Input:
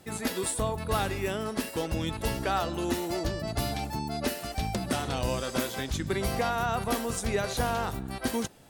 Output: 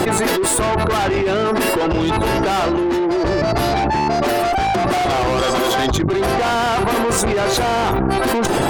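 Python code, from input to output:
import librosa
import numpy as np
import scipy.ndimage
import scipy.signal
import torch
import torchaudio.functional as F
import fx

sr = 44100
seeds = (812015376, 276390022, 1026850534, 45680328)

y = fx.peak_eq(x, sr, hz=990.0, db=7.5, octaves=1.6)
y = fx.spec_gate(y, sr, threshold_db=-25, keep='strong')
y = fx.small_body(y, sr, hz=(730.0, 1100.0, 3300.0), ring_ms=45, db=11, at=(4.22, 6.28))
y = fx.tube_stage(y, sr, drive_db=33.0, bias=0.5)
y = fx.peak_eq(y, sr, hz=360.0, db=10.5, octaves=0.38)
y = fx.env_flatten(y, sr, amount_pct=100)
y = F.gain(torch.from_numpy(y), 8.0).numpy()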